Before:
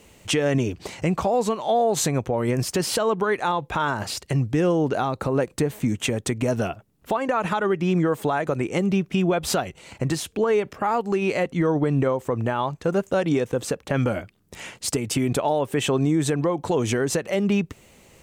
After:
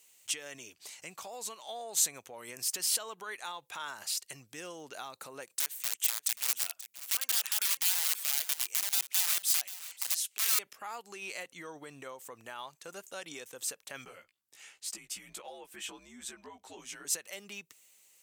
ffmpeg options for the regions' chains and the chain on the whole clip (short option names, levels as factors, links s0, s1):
-filter_complex "[0:a]asettb=1/sr,asplit=3[s0][s1][s2];[s0]atrim=end=5.594[s3];[s1]atrim=start=5.59:end=10.59,asetpts=PTS-STARTPTS,afade=t=in:d=0.004:c=qsin,afade=t=out:st=4.996:d=0.004:c=qsin,aeval=exprs='(mod(7.5*val(0)+1,2)-1)/7.5':c=same,highpass=f=1300:p=1,aecho=1:1:533:0.178,atrim=end_sample=220500[s4];[s2]atrim=start=10.586[s5];[s3][s4]acrossfade=d=0.004:c1=hsin:c2=qsin[s6];[s6][s5]acrossfade=d=0.004:c1=qsin:c2=hsin,asettb=1/sr,asplit=3[s7][s8][s9];[s7]atrim=end=14.054[s10];[s8]atrim=start=14.05:end=17.05,asetpts=PTS-STARTPTS,afade=t=in:d=0.004:c=qsin,afade=t=out:st=2.996:d=0.004:c=qsin,aemphasis=mode=reproduction:type=cd,flanger=delay=15:depth=2.9:speed=1.4,afreqshift=-82[s11];[s9]atrim=start=17.046[s12];[s10][s11]acrossfade=d=0.004:c1=hsin:c2=qsin[s13];[s13][s12]acrossfade=d=0.004:c1=qsin:c2=hsin,aderivative,dynaudnorm=f=280:g=9:m=1.41,volume=0.631"